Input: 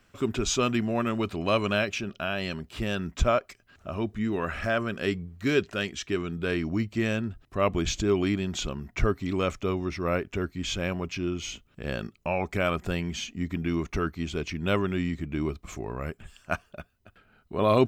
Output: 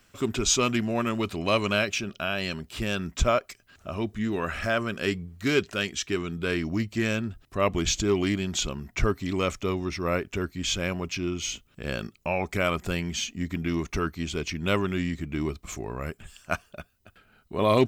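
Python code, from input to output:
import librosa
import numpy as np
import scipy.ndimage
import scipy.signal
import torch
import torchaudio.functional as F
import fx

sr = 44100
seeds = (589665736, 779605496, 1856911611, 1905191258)

y = fx.high_shelf(x, sr, hz=3800.0, db=9.0)
y = fx.doppler_dist(y, sr, depth_ms=0.13)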